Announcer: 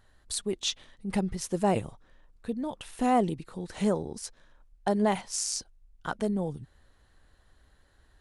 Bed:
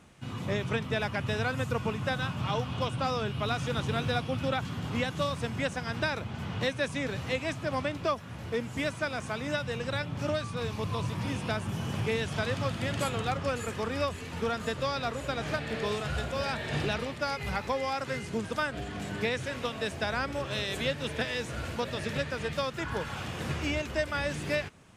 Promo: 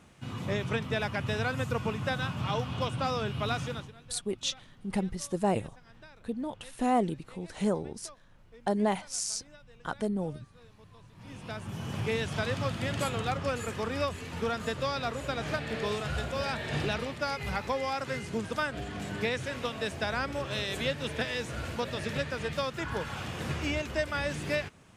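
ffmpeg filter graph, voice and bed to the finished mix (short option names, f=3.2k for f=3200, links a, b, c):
-filter_complex "[0:a]adelay=3800,volume=-2dB[a];[1:a]volume=22dB,afade=t=out:st=3.57:d=0.35:silence=0.0749894,afade=t=in:st=11.13:d=1.02:silence=0.0749894[b];[a][b]amix=inputs=2:normalize=0"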